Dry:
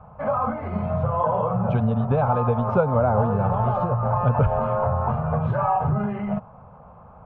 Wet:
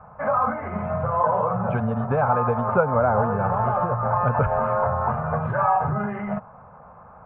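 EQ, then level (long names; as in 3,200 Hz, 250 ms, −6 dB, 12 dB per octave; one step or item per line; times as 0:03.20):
low-pass with resonance 1,800 Hz, resonance Q 2.3
low-shelf EQ 180 Hz −6 dB
0.0 dB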